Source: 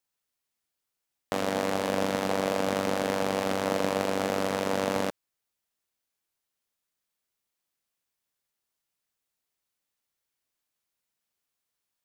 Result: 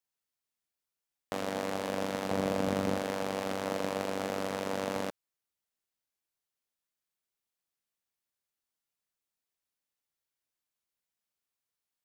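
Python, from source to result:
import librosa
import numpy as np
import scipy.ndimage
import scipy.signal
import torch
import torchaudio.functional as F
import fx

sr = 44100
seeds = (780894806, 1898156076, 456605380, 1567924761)

y = fx.low_shelf(x, sr, hz=290.0, db=10.0, at=(2.31, 2.99))
y = y * 10.0 ** (-6.0 / 20.0)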